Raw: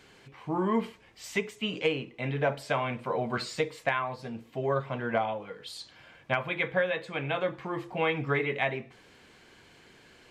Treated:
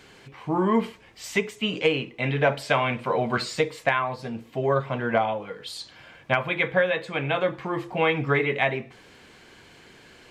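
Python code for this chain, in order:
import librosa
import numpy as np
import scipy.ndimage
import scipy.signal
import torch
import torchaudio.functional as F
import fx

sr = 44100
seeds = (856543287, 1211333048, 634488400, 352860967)

y = fx.dynamic_eq(x, sr, hz=2900.0, q=0.7, threshold_db=-46.0, ratio=4.0, max_db=4, at=(1.93, 3.37))
y = F.gain(torch.from_numpy(y), 5.5).numpy()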